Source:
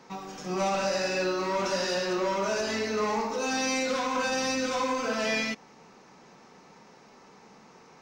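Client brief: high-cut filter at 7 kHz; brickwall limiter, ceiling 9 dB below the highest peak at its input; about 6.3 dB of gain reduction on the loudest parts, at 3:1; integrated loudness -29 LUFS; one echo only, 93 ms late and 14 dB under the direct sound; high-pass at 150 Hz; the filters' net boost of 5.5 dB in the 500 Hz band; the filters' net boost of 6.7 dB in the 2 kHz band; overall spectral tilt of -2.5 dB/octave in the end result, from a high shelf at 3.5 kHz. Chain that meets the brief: high-pass 150 Hz; low-pass 7 kHz; peaking EQ 500 Hz +6 dB; peaking EQ 2 kHz +6.5 dB; treble shelf 3.5 kHz +6 dB; compression 3:1, threshold -28 dBFS; peak limiter -27.5 dBFS; delay 93 ms -14 dB; trim +5.5 dB

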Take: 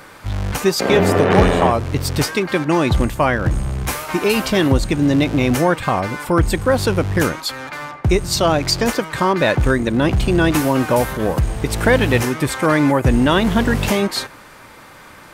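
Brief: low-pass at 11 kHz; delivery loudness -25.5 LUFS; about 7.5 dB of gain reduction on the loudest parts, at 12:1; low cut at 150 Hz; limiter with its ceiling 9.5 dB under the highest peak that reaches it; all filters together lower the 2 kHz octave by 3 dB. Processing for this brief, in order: high-pass 150 Hz; low-pass 11 kHz; peaking EQ 2 kHz -4 dB; compression 12:1, threshold -17 dBFS; peak limiter -15.5 dBFS

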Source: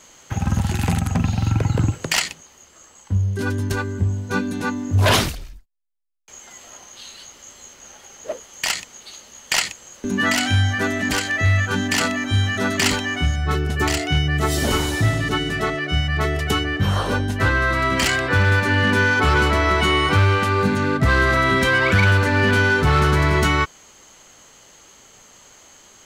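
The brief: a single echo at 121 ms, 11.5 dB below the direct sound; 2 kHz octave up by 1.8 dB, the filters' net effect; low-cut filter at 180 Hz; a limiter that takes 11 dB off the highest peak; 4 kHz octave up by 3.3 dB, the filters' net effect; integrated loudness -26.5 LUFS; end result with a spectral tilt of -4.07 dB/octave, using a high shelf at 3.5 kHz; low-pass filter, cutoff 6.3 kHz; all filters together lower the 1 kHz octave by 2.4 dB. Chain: high-pass 180 Hz; low-pass 6.3 kHz; peaking EQ 1 kHz -4.5 dB; peaking EQ 2 kHz +4 dB; treble shelf 3.5 kHz -5.5 dB; peaking EQ 4 kHz +7.5 dB; peak limiter -15.5 dBFS; delay 121 ms -11.5 dB; trim -3 dB

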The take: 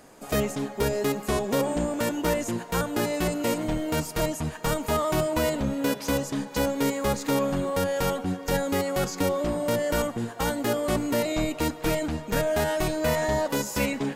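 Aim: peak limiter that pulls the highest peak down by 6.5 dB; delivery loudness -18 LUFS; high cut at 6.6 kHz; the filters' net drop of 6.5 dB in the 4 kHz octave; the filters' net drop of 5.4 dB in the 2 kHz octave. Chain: low-pass 6.6 kHz; peaking EQ 2 kHz -5.5 dB; peaking EQ 4 kHz -6 dB; trim +12 dB; peak limiter -8.5 dBFS

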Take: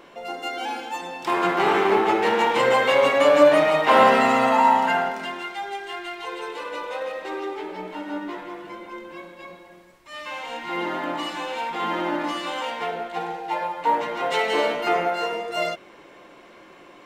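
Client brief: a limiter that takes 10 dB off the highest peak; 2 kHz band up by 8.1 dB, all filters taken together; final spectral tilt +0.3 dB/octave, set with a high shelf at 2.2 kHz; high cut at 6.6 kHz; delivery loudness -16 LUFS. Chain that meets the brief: low-pass 6.6 kHz; peaking EQ 2 kHz +5.5 dB; treble shelf 2.2 kHz +8 dB; trim +5.5 dB; peak limiter -5 dBFS

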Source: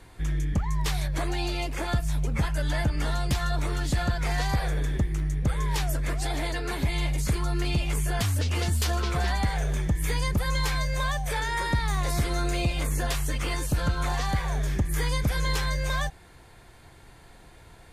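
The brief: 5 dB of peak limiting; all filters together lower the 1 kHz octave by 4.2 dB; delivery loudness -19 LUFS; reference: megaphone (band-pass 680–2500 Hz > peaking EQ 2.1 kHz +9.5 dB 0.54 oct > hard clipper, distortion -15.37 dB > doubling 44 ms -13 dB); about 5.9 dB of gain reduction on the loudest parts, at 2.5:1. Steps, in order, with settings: peaking EQ 1 kHz -4.5 dB; compression 2.5:1, threshold -29 dBFS; peak limiter -24.5 dBFS; band-pass 680–2500 Hz; peaking EQ 2.1 kHz +9.5 dB 0.54 oct; hard clipper -33.5 dBFS; doubling 44 ms -13 dB; trim +20 dB

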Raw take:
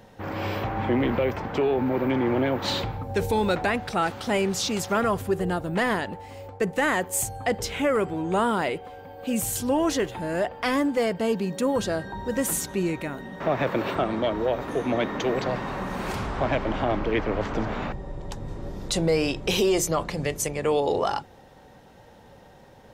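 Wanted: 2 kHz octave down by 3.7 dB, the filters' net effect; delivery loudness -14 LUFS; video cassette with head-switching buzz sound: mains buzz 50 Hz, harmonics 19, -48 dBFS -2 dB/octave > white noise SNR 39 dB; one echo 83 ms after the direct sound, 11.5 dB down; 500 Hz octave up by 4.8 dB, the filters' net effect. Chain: peaking EQ 500 Hz +6 dB; peaking EQ 2 kHz -5 dB; delay 83 ms -11.5 dB; mains buzz 50 Hz, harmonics 19, -48 dBFS -2 dB/octave; white noise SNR 39 dB; trim +9 dB

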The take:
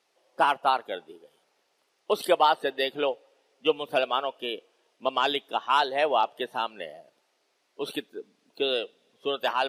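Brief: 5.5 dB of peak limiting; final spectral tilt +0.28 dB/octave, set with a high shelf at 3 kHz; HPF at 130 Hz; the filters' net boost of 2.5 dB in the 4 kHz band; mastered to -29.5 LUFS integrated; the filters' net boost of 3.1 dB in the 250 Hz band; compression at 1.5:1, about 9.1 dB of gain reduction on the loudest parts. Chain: high-pass 130 Hz; peaking EQ 250 Hz +4.5 dB; treble shelf 3 kHz -5 dB; peaking EQ 4 kHz +7 dB; compression 1.5:1, threshold -42 dBFS; trim +7 dB; peak limiter -15 dBFS

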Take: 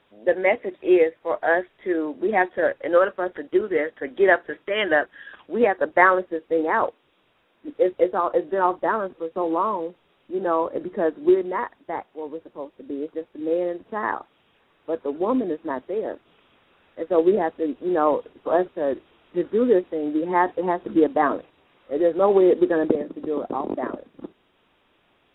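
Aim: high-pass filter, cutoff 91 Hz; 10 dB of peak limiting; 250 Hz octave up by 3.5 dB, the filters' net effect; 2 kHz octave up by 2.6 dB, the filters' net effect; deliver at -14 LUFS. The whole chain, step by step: high-pass 91 Hz; peaking EQ 250 Hz +5.5 dB; peaking EQ 2 kHz +3 dB; trim +8.5 dB; peak limiter -1 dBFS

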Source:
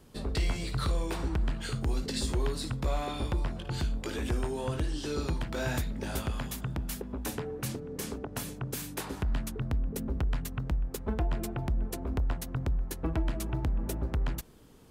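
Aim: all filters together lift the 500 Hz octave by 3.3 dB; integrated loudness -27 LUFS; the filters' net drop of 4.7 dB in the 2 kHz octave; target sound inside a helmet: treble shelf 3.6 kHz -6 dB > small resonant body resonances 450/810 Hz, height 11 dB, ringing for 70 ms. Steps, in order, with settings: peaking EQ 500 Hz +4.5 dB; peaking EQ 2 kHz -5 dB; treble shelf 3.6 kHz -6 dB; small resonant body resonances 450/810 Hz, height 11 dB, ringing for 70 ms; trim +4.5 dB

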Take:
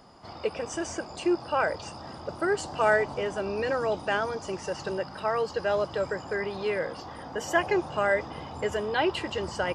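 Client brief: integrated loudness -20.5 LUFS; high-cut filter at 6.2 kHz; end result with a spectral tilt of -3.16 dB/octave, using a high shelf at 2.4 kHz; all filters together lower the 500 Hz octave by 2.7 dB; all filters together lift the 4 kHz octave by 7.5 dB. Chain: low-pass 6.2 kHz; peaking EQ 500 Hz -4 dB; treble shelf 2.4 kHz +4.5 dB; peaking EQ 4 kHz +7.5 dB; trim +8.5 dB

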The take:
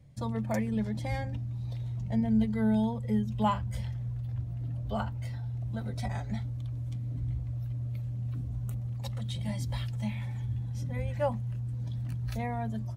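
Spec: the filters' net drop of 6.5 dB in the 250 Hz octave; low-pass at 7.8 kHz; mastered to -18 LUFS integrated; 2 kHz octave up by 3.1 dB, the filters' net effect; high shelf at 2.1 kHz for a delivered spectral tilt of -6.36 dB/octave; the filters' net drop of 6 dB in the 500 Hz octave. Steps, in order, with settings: low-pass 7.8 kHz; peaking EQ 250 Hz -7 dB; peaking EQ 500 Hz -6 dB; peaking EQ 2 kHz +8.5 dB; treble shelf 2.1 kHz -8.5 dB; trim +18 dB

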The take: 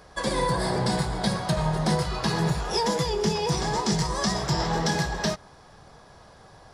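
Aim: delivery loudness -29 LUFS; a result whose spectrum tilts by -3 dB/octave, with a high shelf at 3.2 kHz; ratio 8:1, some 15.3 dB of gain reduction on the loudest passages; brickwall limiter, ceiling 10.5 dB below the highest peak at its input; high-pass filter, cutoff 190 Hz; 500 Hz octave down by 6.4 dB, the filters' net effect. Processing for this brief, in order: high-pass 190 Hz; peaking EQ 500 Hz -8 dB; treble shelf 3.2 kHz +4.5 dB; compression 8:1, threshold -38 dBFS; trim +14.5 dB; peak limiter -20 dBFS

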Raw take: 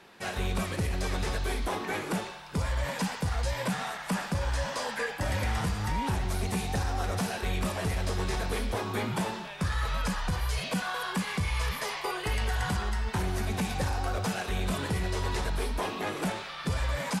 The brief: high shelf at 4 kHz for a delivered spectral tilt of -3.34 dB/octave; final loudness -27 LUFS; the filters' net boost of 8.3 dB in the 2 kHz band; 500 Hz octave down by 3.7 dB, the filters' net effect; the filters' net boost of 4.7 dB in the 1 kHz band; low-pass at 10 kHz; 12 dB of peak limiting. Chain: low-pass 10 kHz; peaking EQ 500 Hz -7 dB; peaking EQ 1 kHz +5.5 dB; peaking EQ 2 kHz +7.5 dB; treble shelf 4 kHz +7 dB; trim +7 dB; peak limiter -19 dBFS

